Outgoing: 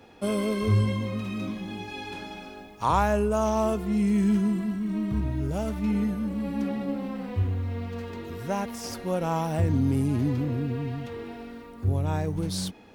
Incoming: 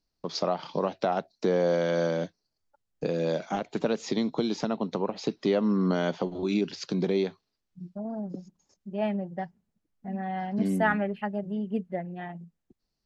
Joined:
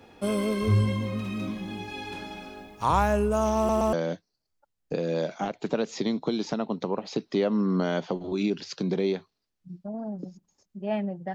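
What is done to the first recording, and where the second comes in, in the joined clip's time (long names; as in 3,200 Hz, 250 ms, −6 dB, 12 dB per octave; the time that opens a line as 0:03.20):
outgoing
0:03.57: stutter in place 0.12 s, 3 plays
0:03.93: continue with incoming from 0:02.04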